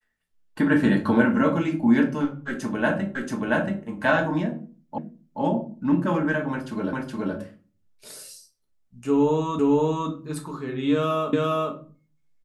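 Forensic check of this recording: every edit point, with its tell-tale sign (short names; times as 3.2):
3.15 repeat of the last 0.68 s
4.98 repeat of the last 0.43 s
6.93 repeat of the last 0.42 s
9.59 repeat of the last 0.51 s
11.33 repeat of the last 0.41 s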